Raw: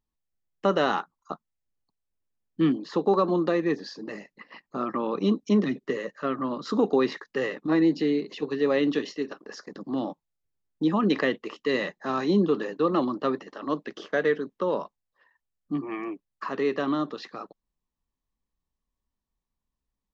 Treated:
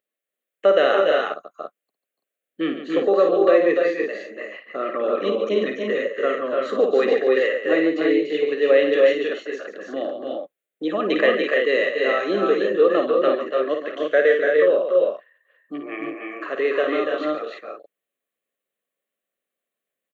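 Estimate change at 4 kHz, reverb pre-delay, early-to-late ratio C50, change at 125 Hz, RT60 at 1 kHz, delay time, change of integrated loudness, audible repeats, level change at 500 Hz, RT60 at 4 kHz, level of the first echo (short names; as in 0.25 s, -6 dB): +6.0 dB, none, none, n/a, none, 55 ms, +6.5 dB, 4, +10.0 dB, none, -7.0 dB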